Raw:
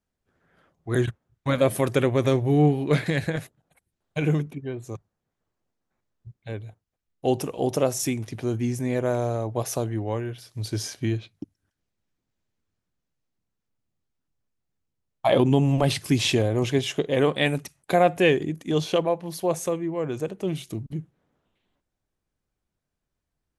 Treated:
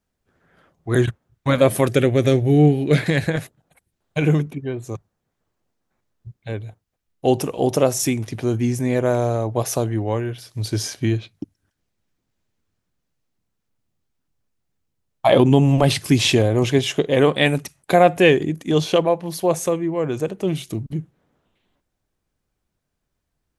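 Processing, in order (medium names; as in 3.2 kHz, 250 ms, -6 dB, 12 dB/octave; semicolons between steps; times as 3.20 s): 1.87–2.98 s: peaking EQ 1 kHz -14 dB 0.55 oct; trim +5.5 dB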